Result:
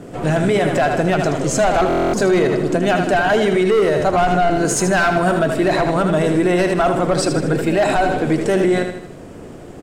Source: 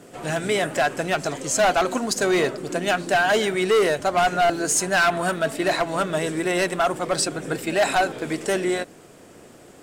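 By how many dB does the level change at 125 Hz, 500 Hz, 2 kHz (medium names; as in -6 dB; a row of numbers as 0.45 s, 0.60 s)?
+12.0 dB, +6.5 dB, +2.0 dB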